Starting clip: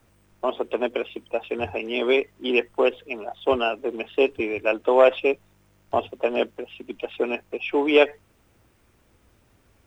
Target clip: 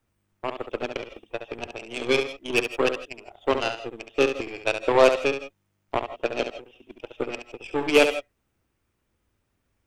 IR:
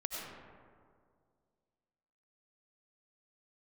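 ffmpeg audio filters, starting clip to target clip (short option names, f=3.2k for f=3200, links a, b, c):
-filter_complex "[0:a]equalizer=f=620:w=1.5:g=-2.5,aeval=exprs='0.501*(cos(1*acos(clip(val(0)/0.501,-1,1)))-cos(1*PI/2))+0.00891*(cos(5*acos(clip(val(0)/0.501,-1,1)))-cos(5*PI/2))+0.0631*(cos(7*acos(clip(val(0)/0.501,-1,1)))-cos(7*PI/2))+0.0141*(cos(8*acos(clip(val(0)/0.501,-1,1)))-cos(8*PI/2))':c=same,asplit=2[a][b];[1:a]atrim=start_sample=2205,atrim=end_sample=4410,adelay=69[c];[b][c]afir=irnorm=-1:irlink=0,volume=-5.5dB[d];[a][d]amix=inputs=2:normalize=0"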